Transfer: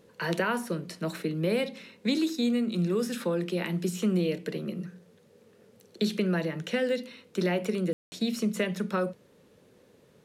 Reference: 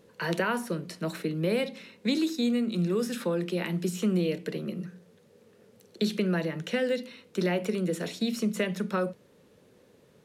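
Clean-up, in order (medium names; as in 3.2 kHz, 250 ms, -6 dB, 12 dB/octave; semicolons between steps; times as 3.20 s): room tone fill 7.93–8.12 s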